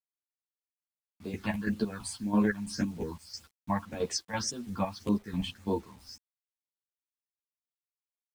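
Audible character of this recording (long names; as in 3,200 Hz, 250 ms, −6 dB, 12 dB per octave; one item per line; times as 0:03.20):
chopped level 3 Hz, depth 65%, duty 50%
phaser sweep stages 6, 1.8 Hz, lowest notch 370–1,900 Hz
a quantiser's noise floor 10 bits, dither none
a shimmering, thickened sound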